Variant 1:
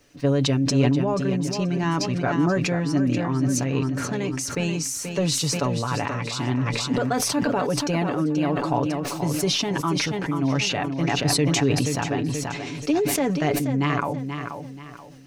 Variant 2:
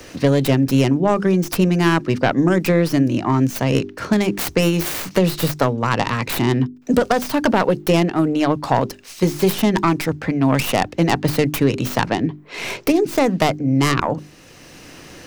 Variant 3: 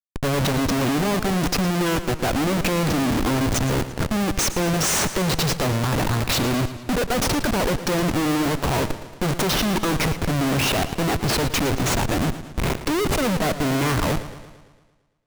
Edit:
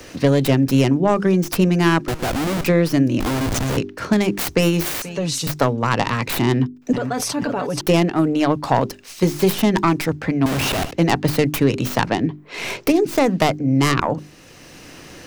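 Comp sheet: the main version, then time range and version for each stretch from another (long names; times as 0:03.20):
2
0:02.08–0:02.64: punch in from 3
0:03.20–0:03.77: punch in from 3
0:05.02–0:05.47: punch in from 1
0:06.93–0:07.81: punch in from 1
0:10.46–0:10.91: punch in from 3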